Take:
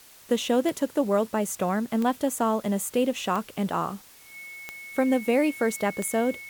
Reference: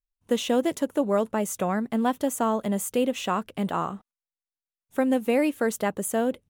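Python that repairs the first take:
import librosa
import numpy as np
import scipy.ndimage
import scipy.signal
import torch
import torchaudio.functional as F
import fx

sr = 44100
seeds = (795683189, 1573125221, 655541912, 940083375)

y = fx.fix_declick_ar(x, sr, threshold=10.0)
y = fx.notch(y, sr, hz=2200.0, q=30.0)
y = fx.noise_reduce(y, sr, print_start_s=3.97, print_end_s=4.47, reduce_db=30.0)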